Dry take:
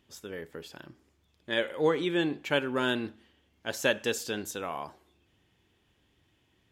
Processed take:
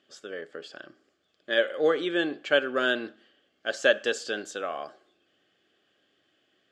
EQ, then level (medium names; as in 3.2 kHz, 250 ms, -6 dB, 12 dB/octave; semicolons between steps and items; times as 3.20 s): Butterworth band-stop 940 Hz, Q 3.9; cabinet simulation 370–8400 Hz, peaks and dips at 600 Hz +6 dB, 1.2 kHz +5 dB, 1.6 kHz +9 dB, 3.1 kHz +8 dB, 4.6 kHz +8 dB, 7.4 kHz +4 dB; tilt shelf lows +5 dB, about 850 Hz; 0.0 dB